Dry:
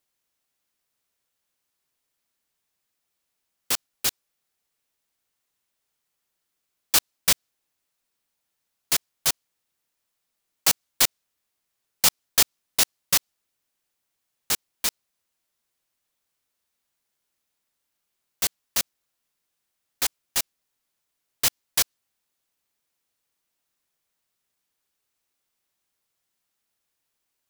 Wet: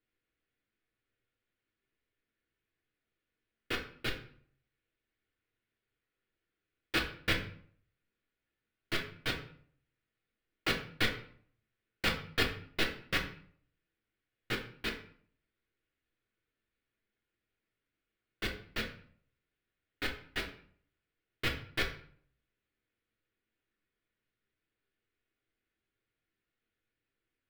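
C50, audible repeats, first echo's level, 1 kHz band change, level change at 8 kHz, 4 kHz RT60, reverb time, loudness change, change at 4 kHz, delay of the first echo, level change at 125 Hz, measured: 9.0 dB, no echo, no echo, -6.5 dB, -27.0 dB, 0.40 s, 0.55 s, -12.5 dB, -10.5 dB, no echo, +3.5 dB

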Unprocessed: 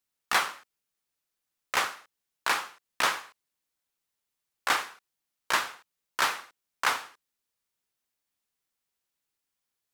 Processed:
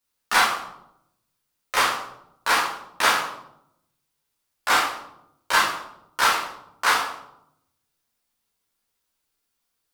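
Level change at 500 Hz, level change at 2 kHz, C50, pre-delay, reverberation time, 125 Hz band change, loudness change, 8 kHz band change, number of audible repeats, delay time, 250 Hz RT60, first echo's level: +7.5 dB, +7.0 dB, 4.5 dB, 9 ms, 0.80 s, +8.0 dB, +7.0 dB, +6.5 dB, no echo, no echo, 1.1 s, no echo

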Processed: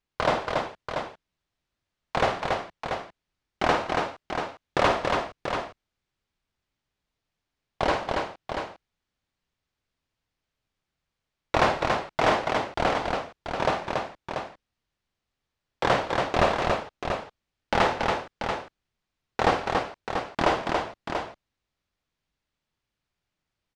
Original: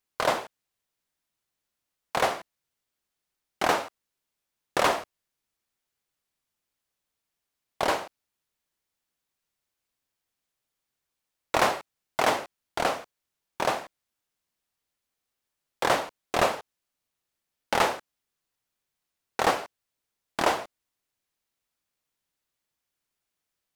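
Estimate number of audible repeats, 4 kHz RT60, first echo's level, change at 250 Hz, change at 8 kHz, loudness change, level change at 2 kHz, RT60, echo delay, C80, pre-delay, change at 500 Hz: 4, no reverb, -9.5 dB, +6.0 dB, -5.5 dB, +0.5 dB, +2.5 dB, no reverb, 52 ms, no reverb, no reverb, +3.5 dB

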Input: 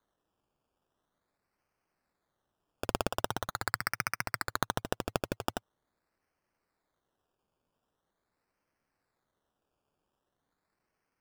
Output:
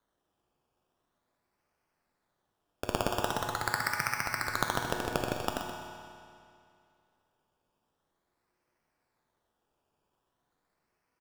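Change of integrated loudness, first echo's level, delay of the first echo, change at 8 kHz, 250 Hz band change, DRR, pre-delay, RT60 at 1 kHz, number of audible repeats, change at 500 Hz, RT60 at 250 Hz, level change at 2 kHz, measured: +2.5 dB, -10.5 dB, 126 ms, +2.0 dB, +2.0 dB, 0.5 dB, 8 ms, 2.4 s, 1, +2.5 dB, 2.4 s, +3.0 dB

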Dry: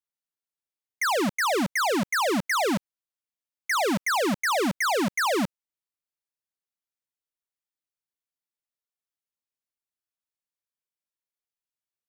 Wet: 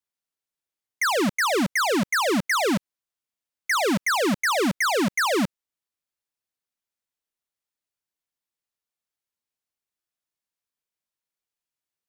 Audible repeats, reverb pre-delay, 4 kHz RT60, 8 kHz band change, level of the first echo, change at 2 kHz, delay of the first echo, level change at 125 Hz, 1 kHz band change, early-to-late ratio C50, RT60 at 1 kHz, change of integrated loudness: no echo, no reverb, no reverb, +2.5 dB, no echo, +2.5 dB, no echo, +3.0 dB, +0.5 dB, no reverb, no reverb, +2.0 dB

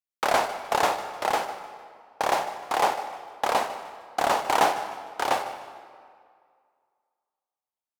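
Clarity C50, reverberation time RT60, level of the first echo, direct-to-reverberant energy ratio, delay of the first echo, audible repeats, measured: 9.0 dB, 2.1 s, -15.0 dB, 8.5 dB, 152 ms, 2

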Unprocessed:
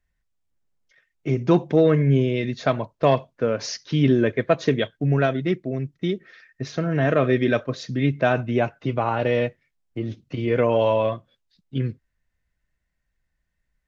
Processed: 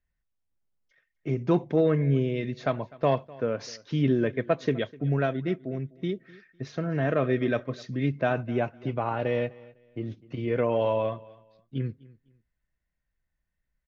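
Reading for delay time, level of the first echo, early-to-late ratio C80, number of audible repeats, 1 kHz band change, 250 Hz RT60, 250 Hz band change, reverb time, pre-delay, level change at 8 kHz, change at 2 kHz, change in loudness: 252 ms, -22.0 dB, no reverb, 2, -6.0 dB, no reverb, -5.5 dB, no reverb, no reverb, no reading, -6.5 dB, -5.5 dB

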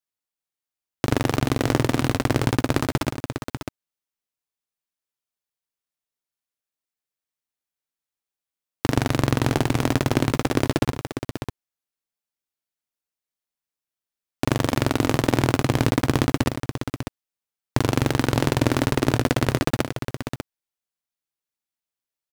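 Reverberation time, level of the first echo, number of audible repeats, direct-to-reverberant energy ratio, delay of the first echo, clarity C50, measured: no reverb, -15.0 dB, 2, no reverb, 74 ms, no reverb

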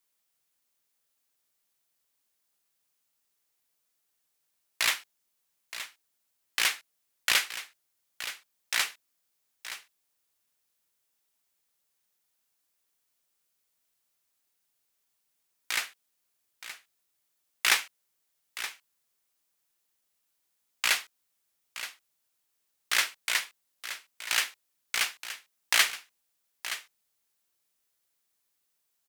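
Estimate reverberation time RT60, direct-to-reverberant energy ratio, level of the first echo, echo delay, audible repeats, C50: no reverb, no reverb, -12.5 dB, 922 ms, 1, no reverb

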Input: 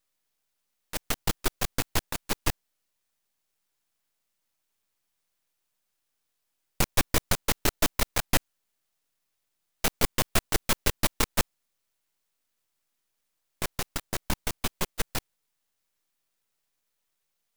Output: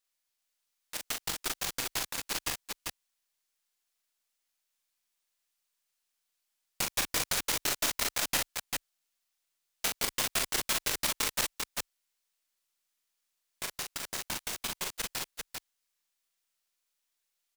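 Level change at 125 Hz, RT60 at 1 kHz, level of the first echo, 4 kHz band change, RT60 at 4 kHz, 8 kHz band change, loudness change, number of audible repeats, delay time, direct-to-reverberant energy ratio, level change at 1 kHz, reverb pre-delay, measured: -14.5 dB, no reverb, -4.5 dB, -0.5 dB, no reverb, 0.0 dB, -3.0 dB, 2, 40 ms, no reverb, -5.0 dB, no reverb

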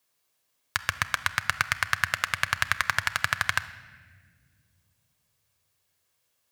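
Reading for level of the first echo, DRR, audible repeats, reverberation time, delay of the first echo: no echo, 11.5 dB, no echo, 1.8 s, no echo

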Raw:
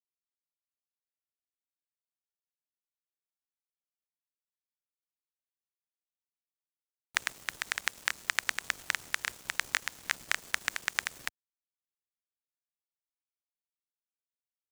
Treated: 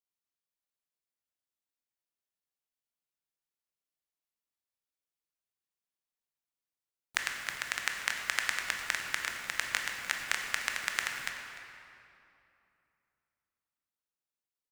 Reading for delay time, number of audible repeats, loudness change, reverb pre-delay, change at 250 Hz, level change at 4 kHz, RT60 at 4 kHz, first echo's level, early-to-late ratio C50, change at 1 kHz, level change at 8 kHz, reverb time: 299 ms, 1, +0.5 dB, 16 ms, +1.5 dB, +0.5 dB, 1.8 s, -16.0 dB, 3.0 dB, +1.0 dB, 0.0 dB, 2.8 s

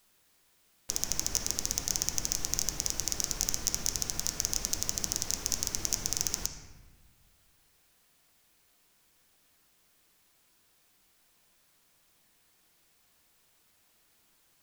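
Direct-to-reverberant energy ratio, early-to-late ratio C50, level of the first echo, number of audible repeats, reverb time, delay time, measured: 4.5 dB, 6.5 dB, no echo, no echo, 1.2 s, no echo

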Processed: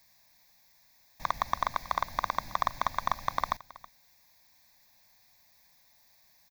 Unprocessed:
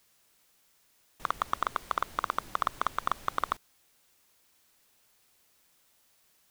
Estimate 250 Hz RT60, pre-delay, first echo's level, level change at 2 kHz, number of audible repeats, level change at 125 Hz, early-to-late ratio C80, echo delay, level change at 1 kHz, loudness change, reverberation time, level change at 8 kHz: no reverb, no reverb, -20.0 dB, +1.0 dB, 1, +5.0 dB, no reverb, 323 ms, +1.5 dB, +1.0 dB, no reverb, +1.0 dB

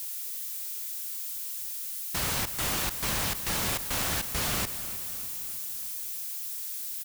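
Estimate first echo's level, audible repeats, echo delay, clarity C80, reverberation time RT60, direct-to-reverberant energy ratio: -14.0 dB, 5, 306 ms, no reverb, no reverb, no reverb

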